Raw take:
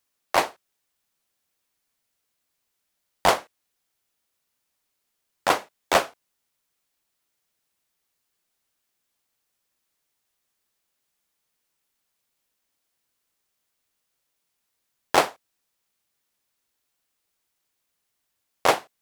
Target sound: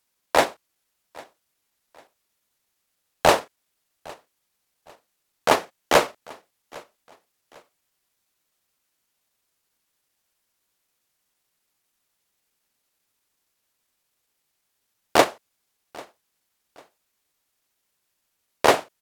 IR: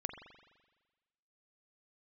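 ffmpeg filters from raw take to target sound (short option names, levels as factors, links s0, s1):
-af "aecho=1:1:800|1600:0.0668|0.0221,asetrate=38170,aresample=44100,atempo=1.15535,volume=1.33"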